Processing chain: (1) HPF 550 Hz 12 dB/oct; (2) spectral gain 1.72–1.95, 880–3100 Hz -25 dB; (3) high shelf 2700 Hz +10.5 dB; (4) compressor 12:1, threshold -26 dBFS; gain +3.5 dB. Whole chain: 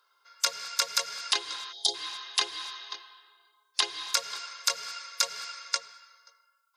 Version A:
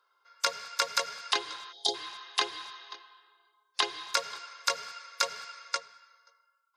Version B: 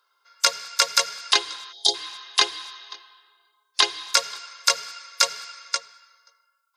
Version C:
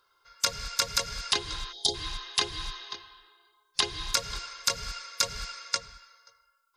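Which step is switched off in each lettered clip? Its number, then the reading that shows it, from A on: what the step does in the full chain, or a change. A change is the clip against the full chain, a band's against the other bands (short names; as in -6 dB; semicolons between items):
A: 3, 8 kHz band -8.5 dB; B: 4, mean gain reduction 2.5 dB; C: 1, 250 Hz band +10.0 dB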